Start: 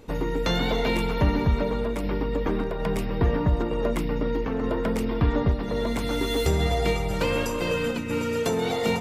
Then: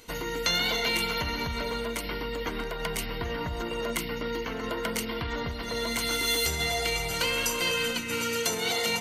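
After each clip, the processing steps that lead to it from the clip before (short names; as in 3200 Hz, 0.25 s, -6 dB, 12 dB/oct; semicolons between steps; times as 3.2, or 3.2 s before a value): ripple EQ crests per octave 1.9, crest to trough 7 dB; limiter -16.5 dBFS, peak gain reduction 7 dB; tilt shelf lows -10 dB, about 1300 Hz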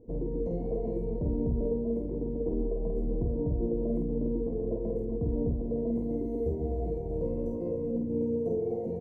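inverse Chebyshev low-pass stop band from 1300 Hz, stop band 50 dB; doubler 48 ms -3 dB; gain +3.5 dB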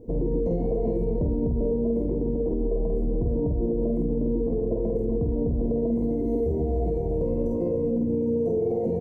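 limiter -26.5 dBFS, peak gain reduction 7.5 dB; gain +9 dB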